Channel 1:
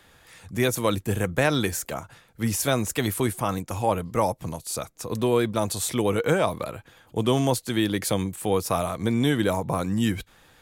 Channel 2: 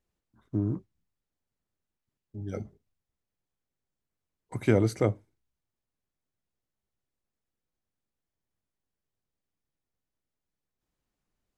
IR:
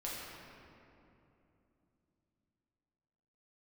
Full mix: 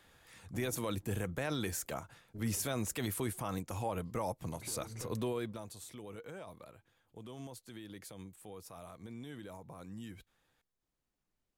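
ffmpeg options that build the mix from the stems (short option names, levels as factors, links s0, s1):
-filter_complex "[0:a]alimiter=limit=0.141:level=0:latency=1:release=47,volume=0.376,afade=t=out:st=5.22:d=0.5:silence=0.237137,asplit=2[s0][s1];[1:a]bandreject=f=55.95:t=h:w=4,bandreject=f=111.9:t=h:w=4,bandreject=f=167.85:t=h:w=4,bandreject=f=223.8:t=h:w=4,alimiter=limit=0.0891:level=0:latency=1:release=275,asoftclip=type=tanh:threshold=0.0178,volume=0.668,asplit=2[s2][s3];[s3]volume=0.0841[s4];[s1]apad=whole_len=510371[s5];[s2][s5]sidechaincompress=threshold=0.00501:ratio=8:attack=10:release=163[s6];[2:a]atrim=start_sample=2205[s7];[s4][s7]afir=irnorm=-1:irlink=0[s8];[s0][s6][s8]amix=inputs=3:normalize=0"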